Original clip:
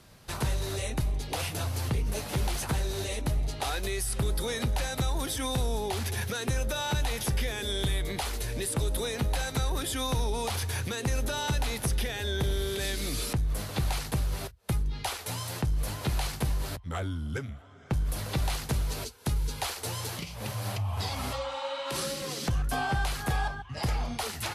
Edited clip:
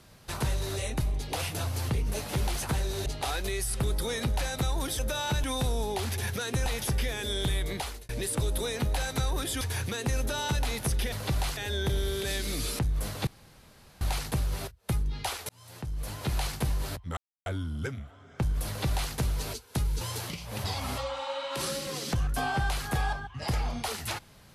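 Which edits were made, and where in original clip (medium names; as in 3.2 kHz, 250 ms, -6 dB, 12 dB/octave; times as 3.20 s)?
3.06–3.45 s: delete
6.60–7.05 s: move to 5.38 s
8.14–8.48 s: fade out
10.00–10.60 s: delete
13.81 s: insert room tone 0.74 s
15.29–16.19 s: fade in
16.97 s: insert silence 0.29 s
18.18–18.63 s: copy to 12.11 s
19.52–19.90 s: delete
20.53–20.99 s: delete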